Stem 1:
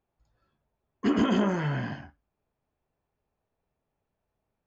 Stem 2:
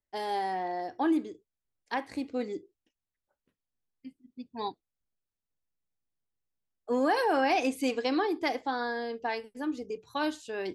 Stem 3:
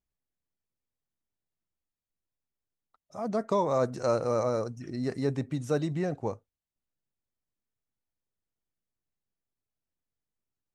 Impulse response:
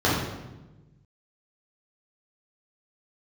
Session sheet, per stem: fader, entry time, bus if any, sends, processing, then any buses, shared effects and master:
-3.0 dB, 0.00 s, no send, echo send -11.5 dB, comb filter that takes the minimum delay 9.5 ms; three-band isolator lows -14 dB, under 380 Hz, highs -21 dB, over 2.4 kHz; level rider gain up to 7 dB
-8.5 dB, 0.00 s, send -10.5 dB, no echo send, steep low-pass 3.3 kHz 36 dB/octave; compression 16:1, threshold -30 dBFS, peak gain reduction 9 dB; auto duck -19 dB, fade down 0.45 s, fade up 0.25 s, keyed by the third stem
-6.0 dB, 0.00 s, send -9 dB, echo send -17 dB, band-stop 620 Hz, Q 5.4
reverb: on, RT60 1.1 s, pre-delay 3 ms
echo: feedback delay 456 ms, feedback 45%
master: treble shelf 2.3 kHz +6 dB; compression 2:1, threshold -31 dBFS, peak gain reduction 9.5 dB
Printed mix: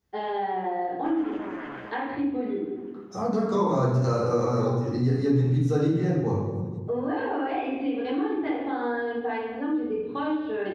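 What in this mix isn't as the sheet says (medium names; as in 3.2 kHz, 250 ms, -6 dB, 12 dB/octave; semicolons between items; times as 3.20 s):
stem 1 -3.0 dB -> -10.5 dB; reverb return +10.0 dB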